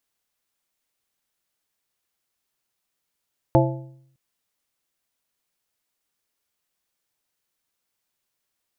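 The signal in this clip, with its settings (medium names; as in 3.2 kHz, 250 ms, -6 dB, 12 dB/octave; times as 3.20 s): metal hit plate, length 0.61 s, lowest mode 133 Hz, modes 5, decay 0.74 s, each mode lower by 1 dB, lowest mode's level -14.5 dB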